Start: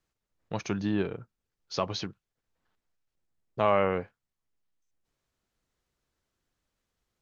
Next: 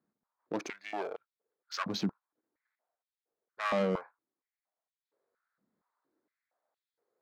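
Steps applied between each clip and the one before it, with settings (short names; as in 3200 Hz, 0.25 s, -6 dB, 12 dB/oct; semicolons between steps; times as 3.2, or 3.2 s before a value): Wiener smoothing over 15 samples; soft clip -26.5 dBFS, distortion -6 dB; stepped high-pass 4.3 Hz 210–3100 Hz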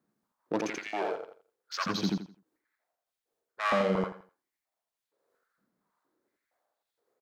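on a send: feedback echo 84 ms, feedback 26%, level -3 dB; on the sum: noise-modulated level, depth 50%; gain +6 dB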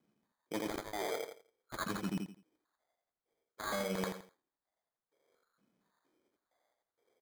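Wiener smoothing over 15 samples; reverse; compressor 5:1, threshold -37 dBFS, peak gain reduction 13 dB; reverse; sample-and-hold 16×; gain +2 dB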